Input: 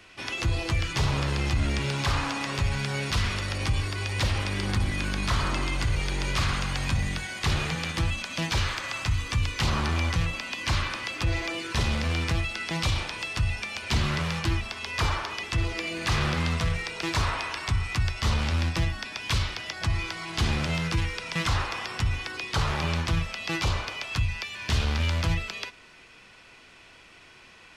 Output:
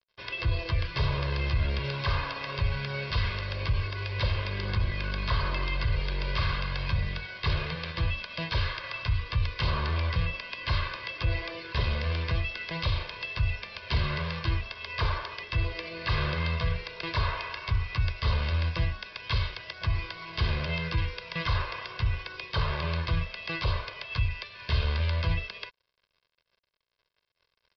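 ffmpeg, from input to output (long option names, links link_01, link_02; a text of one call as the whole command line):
ffmpeg -i in.wav -af "aresample=11025,aeval=exprs='sgn(val(0))*max(abs(val(0))-0.00562,0)':channel_layout=same,aresample=44100,aecho=1:1:1.9:0.71,volume=-4dB" out.wav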